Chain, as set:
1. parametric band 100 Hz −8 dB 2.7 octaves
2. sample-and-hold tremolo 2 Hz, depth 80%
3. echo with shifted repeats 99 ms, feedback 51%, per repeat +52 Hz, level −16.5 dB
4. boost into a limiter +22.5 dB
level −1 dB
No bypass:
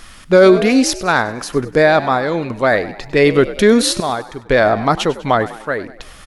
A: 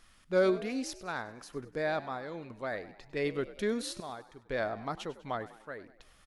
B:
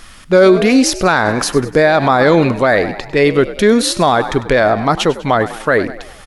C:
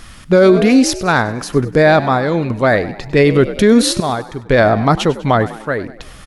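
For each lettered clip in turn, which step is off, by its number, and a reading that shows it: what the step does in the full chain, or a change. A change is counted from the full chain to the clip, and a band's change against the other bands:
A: 4, change in crest factor +5.0 dB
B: 2, change in momentary loudness spread −6 LU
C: 1, 125 Hz band +6.0 dB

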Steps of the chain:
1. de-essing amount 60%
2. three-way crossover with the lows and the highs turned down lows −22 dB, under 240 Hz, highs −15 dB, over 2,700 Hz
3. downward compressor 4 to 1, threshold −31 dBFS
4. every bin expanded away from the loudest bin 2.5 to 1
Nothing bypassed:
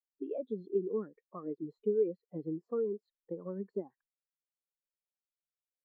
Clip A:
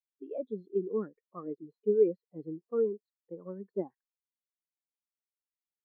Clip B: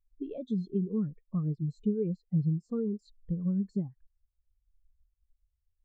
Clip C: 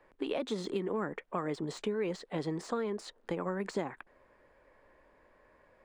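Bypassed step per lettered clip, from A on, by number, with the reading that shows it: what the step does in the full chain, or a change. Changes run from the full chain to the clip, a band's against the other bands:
3, change in crest factor +3.0 dB
2, change in crest factor −3.0 dB
4, 1 kHz band +10.5 dB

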